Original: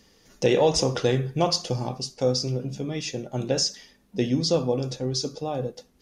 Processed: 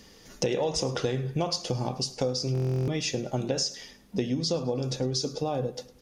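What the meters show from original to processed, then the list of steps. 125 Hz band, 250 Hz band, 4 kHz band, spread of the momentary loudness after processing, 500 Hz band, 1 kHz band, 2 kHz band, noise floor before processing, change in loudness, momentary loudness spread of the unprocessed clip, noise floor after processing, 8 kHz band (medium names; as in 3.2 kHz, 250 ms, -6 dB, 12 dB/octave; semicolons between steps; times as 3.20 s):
-1.5 dB, -3.5 dB, -3.5 dB, 4 LU, -5.0 dB, -4.5 dB, -3.5 dB, -60 dBFS, -4.0 dB, 10 LU, -54 dBFS, -3.0 dB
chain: compression 6:1, threshold -31 dBFS, peak gain reduction 14.5 dB; on a send: feedback delay 105 ms, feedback 43%, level -20.5 dB; on the sum: buffer glitch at 2.53 s, samples 1024, times 14; trim +5.5 dB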